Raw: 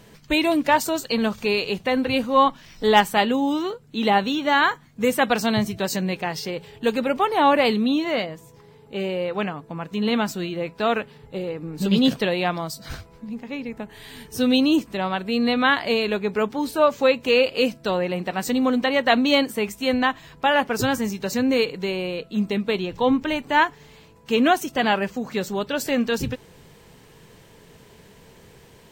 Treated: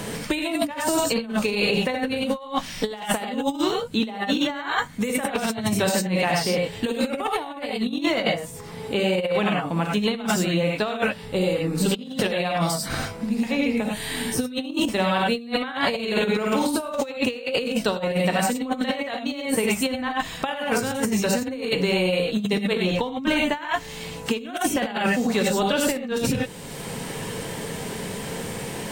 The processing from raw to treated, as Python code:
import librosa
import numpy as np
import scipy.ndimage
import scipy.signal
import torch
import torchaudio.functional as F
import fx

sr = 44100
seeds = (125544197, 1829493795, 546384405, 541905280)

y = fx.median_filter(x, sr, points=3, at=(14.69, 15.44))
y = fx.hum_notches(y, sr, base_hz=60, count=2)
y = fx.room_flutter(y, sr, wall_m=8.9, rt60_s=0.4, at=(15.98, 16.87), fade=0.02)
y = fx.rev_gated(y, sr, seeds[0], gate_ms=120, shape='rising', drr_db=-1.5)
y = fx.over_compress(y, sr, threshold_db=-22.0, ratio=-0.5)
y = fx.peak_eq(y, sr, hz=9000.0, db=8.5, octaves=0.43)
y = fx.band_squash(y, sr, depth_pct=70)
y = y * librosa.db_to_amplitude(-2.0)